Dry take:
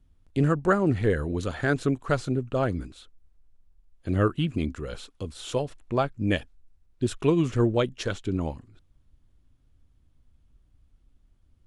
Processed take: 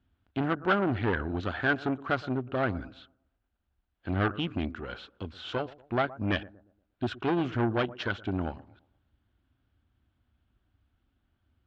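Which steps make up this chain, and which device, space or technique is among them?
analogue delay pedal into a guitar amplifier (bucket-brigade echo 118 ms, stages 1024, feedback 35%, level -19.5 dB; valve stage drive 22 dB, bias 0.65; cabinet simulation 82–4100 Hz, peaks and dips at 150 Hz -10 dB, 480 Hz -5 dB, 740 Hz +4 dB, 1.5 kHz +8 dB, 3 kHz +3 dB); trim +1.5 dB

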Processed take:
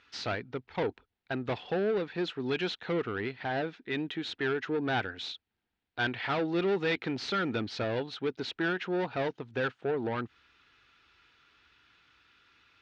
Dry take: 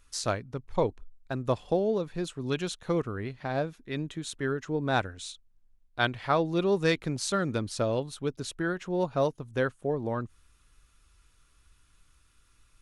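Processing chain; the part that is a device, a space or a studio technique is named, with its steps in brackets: overdrive pedal into a guitar cabinet (overdrive pedal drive 25 dB, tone 2.8 kHz, clips at -11 dBFS; cabinet simulation 76–4400 Hz, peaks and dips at 150 Hz -5 dB, 580 Hz -8 dB, 1.1 kHz -9 dB); trim -7.5 dB

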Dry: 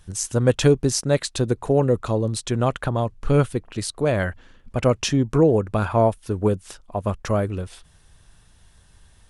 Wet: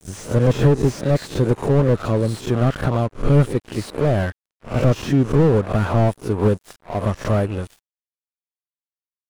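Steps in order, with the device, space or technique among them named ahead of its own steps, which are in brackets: reverse spectral sustain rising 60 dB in 0.35 s; early transistor amplifier (crossover distortion -38 dBFS; slew-rate limiter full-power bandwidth 55 Hz); trim +4 dB

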